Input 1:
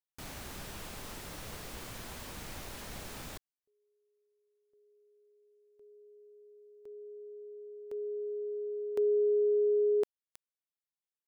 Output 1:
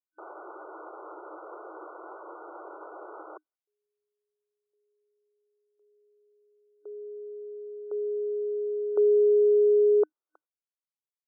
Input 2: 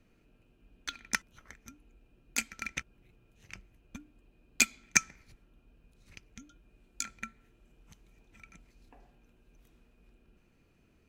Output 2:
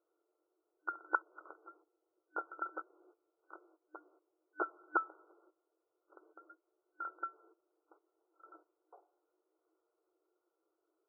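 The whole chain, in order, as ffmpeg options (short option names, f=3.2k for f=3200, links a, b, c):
-af "agate=range=-16dB:threshold=-53dB:ratio=16:release=244:detection=rms,afftfilt=real='re*between(b*sr/4096,310,1500)':imag='im*between(b*sr/4096,310,1500)':win_size=4096:overlap=0.75,volume=7dB"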